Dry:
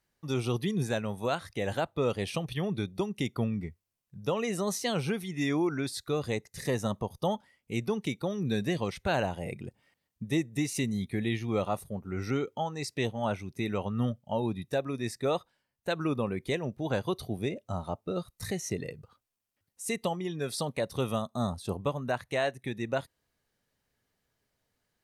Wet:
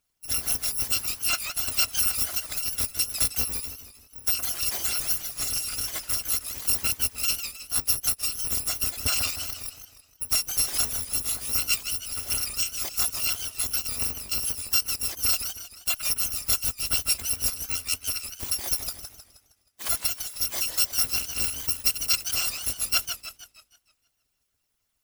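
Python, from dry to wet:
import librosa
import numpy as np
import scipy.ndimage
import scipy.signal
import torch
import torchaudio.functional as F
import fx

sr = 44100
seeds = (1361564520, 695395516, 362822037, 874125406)

y = fx.bit_reversed(x, sr, seeds[0], block=256)
y = fx.hpss(y, sr, part='harmonic', gain_db=-16)
y = fx.echo_warbled(y, sr, ms=157, feedback_pct=46, rate_hz=2.8, cents=210, wet_db=-8)
y = y * 10.0 ** (8.0 / 20.0)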